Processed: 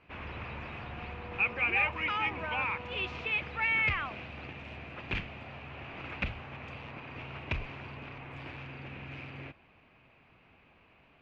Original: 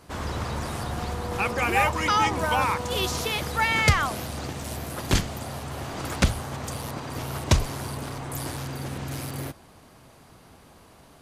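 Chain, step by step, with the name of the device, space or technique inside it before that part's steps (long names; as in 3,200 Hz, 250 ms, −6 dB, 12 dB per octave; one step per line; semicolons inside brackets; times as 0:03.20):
overdriven synthesiser ladder filter (soft clipping −15.5 dBFS, distortion −14 dB; transistor ladder low-pass 2,700 Hz, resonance 75%)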